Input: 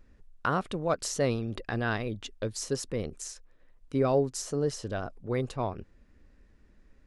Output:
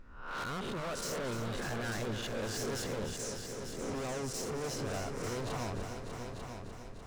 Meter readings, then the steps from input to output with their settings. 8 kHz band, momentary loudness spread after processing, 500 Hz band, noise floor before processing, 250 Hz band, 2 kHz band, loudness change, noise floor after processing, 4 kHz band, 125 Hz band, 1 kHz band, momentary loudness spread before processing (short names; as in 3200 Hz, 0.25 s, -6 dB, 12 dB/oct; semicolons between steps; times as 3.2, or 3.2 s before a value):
-2.5 dB, 7 LU, -7.5 dB, -61 dBFS, -6.0 dB, -3.5 dB, -6.5 dB, -47 dBFS, -0.5 dB, -6.0 dB, -5.5 dB, 9 LU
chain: spectral swells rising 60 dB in 0.55 s; high shelf 5100 Hz -8 dB; limiter -21.5 dBFS, peak gain reduction 8 dB; hard clip -38.5 dBFS, distortion -4 dB; multi-head echo 0.298 s, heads all three, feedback 50%, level -10.5 dB; gain +2 dB